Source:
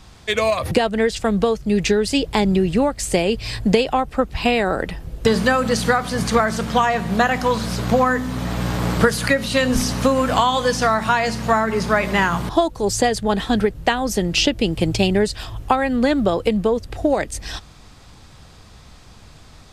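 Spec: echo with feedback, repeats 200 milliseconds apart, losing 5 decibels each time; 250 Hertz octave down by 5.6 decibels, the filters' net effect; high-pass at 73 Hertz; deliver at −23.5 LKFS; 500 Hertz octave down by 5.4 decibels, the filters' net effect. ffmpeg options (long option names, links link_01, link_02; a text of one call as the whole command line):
ffmpeg -i in.wav -af "highpass=73,equalizer=frequency=250:width_type=o:gain=-6,equalizer=frequency=500:width_type=o:gain=-5,aecho=1:1:200|400|600|800|1000|1200|1400:0.562|0.315|0.176|0.0988|0.0553|0.031|0.0173,volume=-3dB" out.wav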